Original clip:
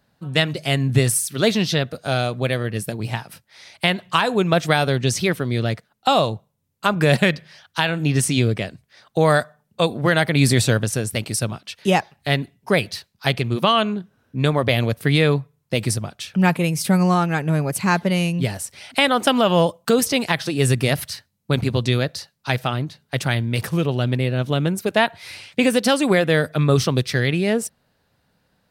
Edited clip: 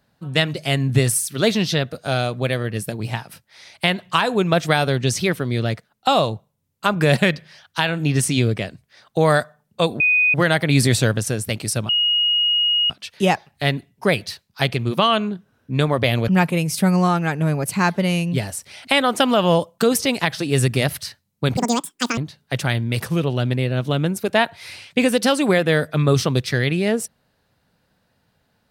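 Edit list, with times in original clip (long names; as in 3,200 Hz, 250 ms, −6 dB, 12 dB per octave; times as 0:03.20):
0:10.00: insert tone 2,490 Hz −13 dBFS 0.34 s
0:11.55: insert tone 2,880 Hz −15 dBFS 1.01 s
0:14.93–0:16.35: remove
0:21.64–0:22.79: play speed 190%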